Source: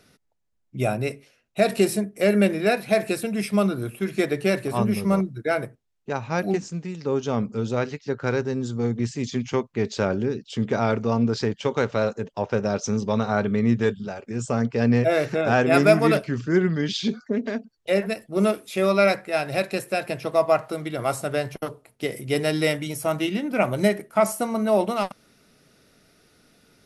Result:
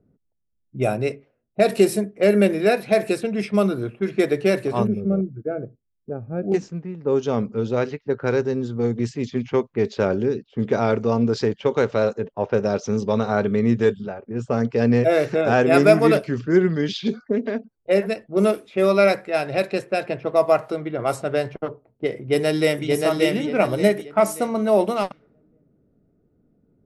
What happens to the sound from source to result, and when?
4.87–6.52 s: boxcar filter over 45 samples
22.19–22.88 s: echo throw 580 ms, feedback 35%, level -2 dB
whole clip: level-controlled noise filter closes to 350 Hz, open at -19 dBFS; dynamic bell 430 Hz, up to +5 dB, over -35 dBFS, Q 1.3

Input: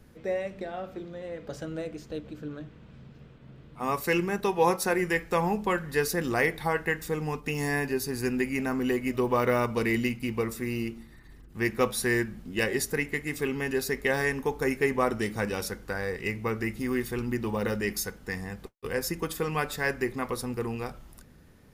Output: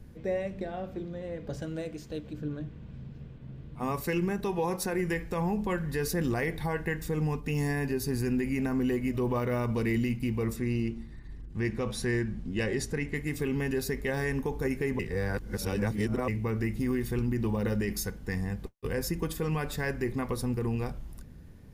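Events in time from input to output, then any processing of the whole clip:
1.62–2.33 s: tilt EQ +1.5 dB/octave
10.56–13.15 s: low-pass 7.8 kHz
14.99–16.28 s: reverse
whole clip: bass shelf 250 Hz +12 dB; band-stop 1.3 kHz, Q 13; peak limiter -17.5 dBFS; trim -3 dB

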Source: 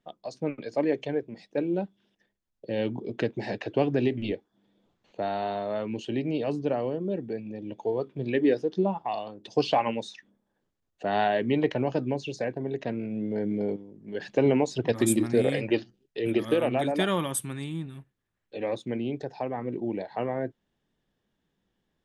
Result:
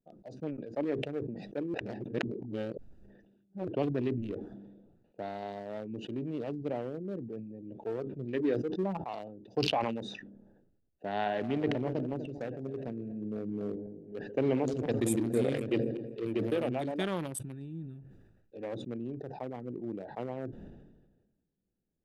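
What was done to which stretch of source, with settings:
1.74–3.67 s: reverse
11.14–16.66 s: backward echo that repeats 124 ms, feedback 61%, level -11 dB
17.47–18.61 s: treble shelf 2.3 kHz +6 dB
whole clip: local Wiener filter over 41 samples; decay stretcher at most 45 dB/s; trim -7 dB

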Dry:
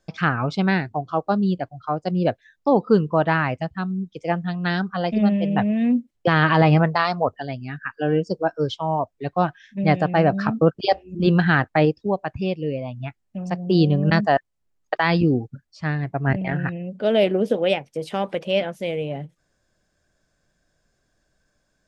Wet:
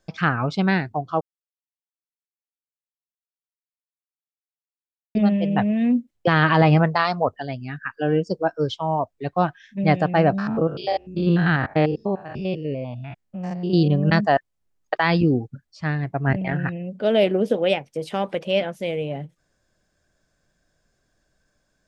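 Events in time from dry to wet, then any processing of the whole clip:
1.21–5.15 s: mute
10.38–13.88 s: spectrogram pixelated in time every 100 ms

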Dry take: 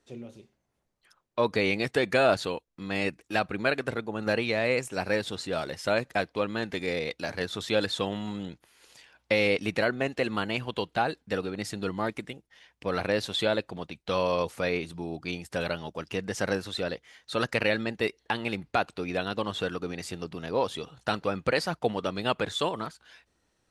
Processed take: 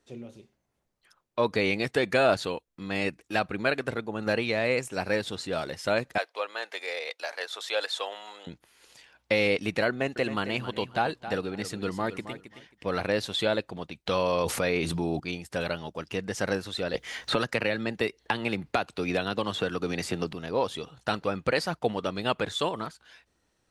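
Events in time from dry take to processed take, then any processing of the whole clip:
6.18–8.47 s: high-pass 540 Hz 24 dB/octave
9.89–13.03 s: feedback delay 269 ms, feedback 18%, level -12 dB
14.06–15.20 s: level flattener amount 70%
16.94–20.33 s: three bands compressed up and down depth 100%

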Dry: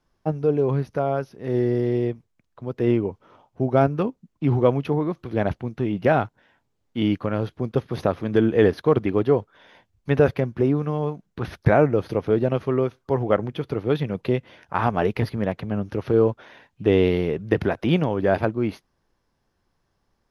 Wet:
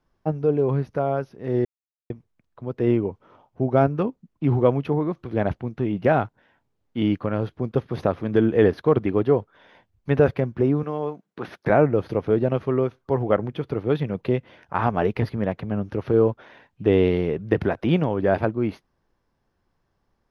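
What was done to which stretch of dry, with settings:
1.65–2.10 s: mute
10.83–11.70 s: high-pass 240 Hz
whole clip: treble shelf 4.1 kHz -9 dB

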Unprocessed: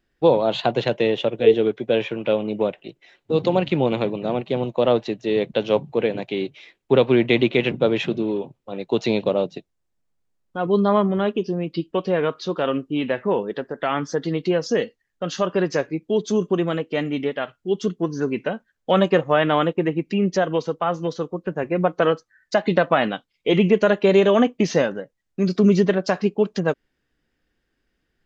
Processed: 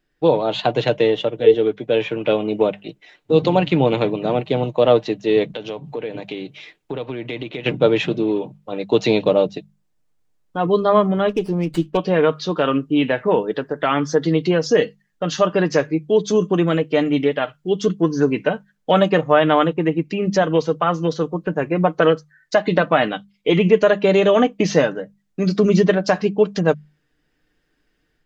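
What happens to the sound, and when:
1.01–1.64 s: band-stop 2.5 kHz, Q 10
5.48–7.66 s: compression 4:1, threshold -31 dBFS
11.29–11.97 s: sliding maximum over 5 samples
whole clip: hum notches 50/100/150/200 Hz; comb 6.6 ms, depth 39%; level rider gain up to 5 dB

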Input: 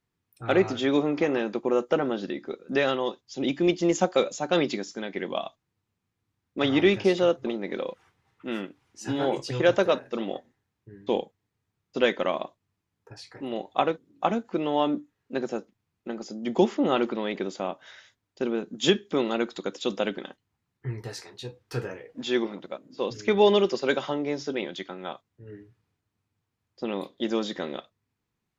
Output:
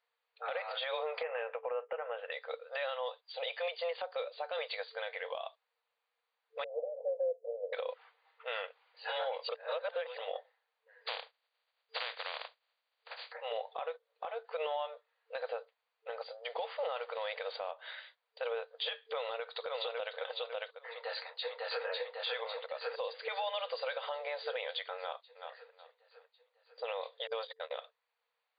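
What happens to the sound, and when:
1.23–2.32 s: Chebyshev low-pass 2.8 kHz, order 5
6.64–7.73 s: steep low-pass 610 Hz 48 dB/octave
9.49–10.18 s: reverse
11.05–13.31 s: spectral contrast reduction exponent 0.19
16.44–17.71 s: CVSD coder 64 kbps
19.05–20.15 s: echo throw 550 ms, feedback 20%, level -6.5 dB
20.87–21.85 s: echo throw 550 ms, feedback 65%, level -0.5 dB
24.98–25.54 s: echo throw 370 ms, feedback 25%, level -13 dB
27.27–27.71 s: gate -31 dBFS, range -41 dB
whole clip: FFT band-pass 450–4800 Hz; compression 10:1, threshold -33 dBFS; peak limiter -29.5 dBFS; trim +2.5 dB

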